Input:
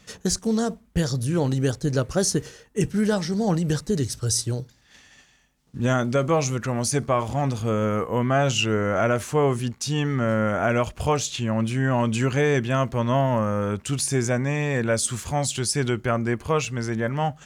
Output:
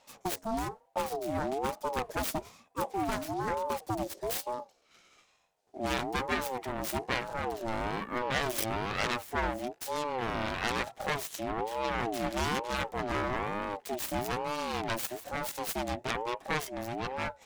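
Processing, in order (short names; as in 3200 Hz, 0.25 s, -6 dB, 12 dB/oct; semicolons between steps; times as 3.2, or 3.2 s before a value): self-modulated delay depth 0.63 ms; ring modulator with a swept carrier 590 Hz, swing 25%, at 1.1 Hz; gain -6.5 dB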